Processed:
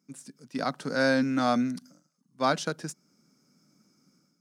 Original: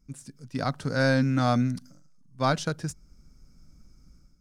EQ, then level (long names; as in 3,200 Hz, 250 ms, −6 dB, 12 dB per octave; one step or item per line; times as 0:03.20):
high-pass filter 190 Hz 24 dB per octave
0.0 dB